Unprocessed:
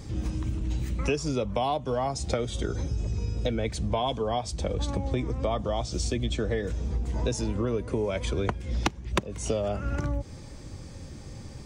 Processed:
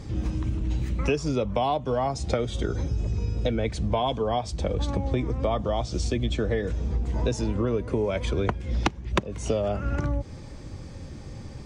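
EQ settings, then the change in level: high shelf 6900 Hz -11.5 dB; +2.5 dB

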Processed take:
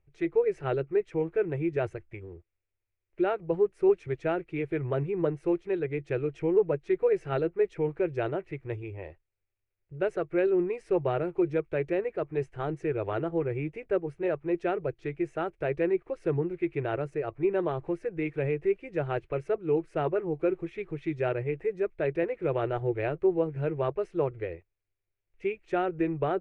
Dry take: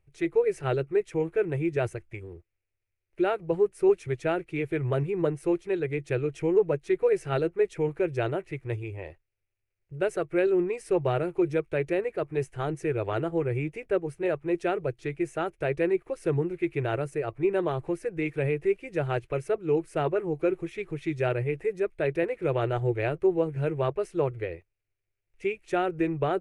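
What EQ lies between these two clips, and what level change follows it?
LPF 2600 Hz 6 dB/oct; air absorption 50 m; bell 120 Hz -5 dB 0.32 oct; -1.0 dB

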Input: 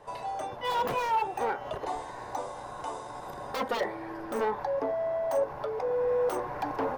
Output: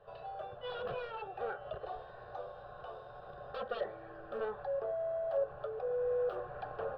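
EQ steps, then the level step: air absorption 260 m; fixed phaser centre 1400 Hz, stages 8; -4.5 dB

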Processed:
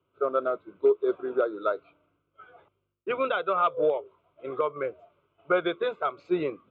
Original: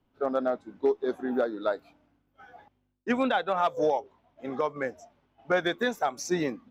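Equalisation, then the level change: speaker cabinet 120–3600 Hz, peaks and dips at 240 Hz +7 dB, 380 Hz +5 dB, 790 Hz +4 dB, 1300 Hz +7 dB, 2300 Hz +3 dB; low shelf 170 Hz +5.5 dB; fixed phaser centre 1200 Hz, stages 8; 0.0 dB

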